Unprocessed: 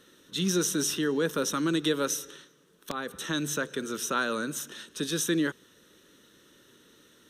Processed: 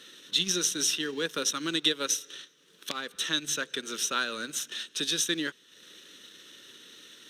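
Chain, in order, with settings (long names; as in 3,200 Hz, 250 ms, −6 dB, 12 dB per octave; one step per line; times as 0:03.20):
mu-law and A-law mismatch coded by mu
meter weighting curve D
transient designer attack +3 dB, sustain −9 dB
level −6.5 dB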